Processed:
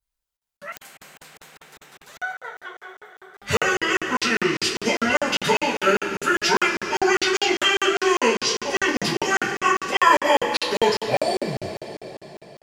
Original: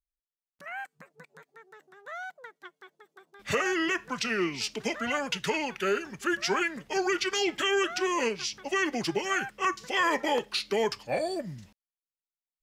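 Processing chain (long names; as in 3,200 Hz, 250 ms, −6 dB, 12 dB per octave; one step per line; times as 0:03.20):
coupled-rooms reverb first 0.26 s, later 3.8 s, from −18 dB, DRR −9.5 dB
regular buffer underruns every 0.20 s, samples 2,048, zero, from 0:00.37
0:00.72–0:02.19: every bin compressed towards the loudest bin 4 to 1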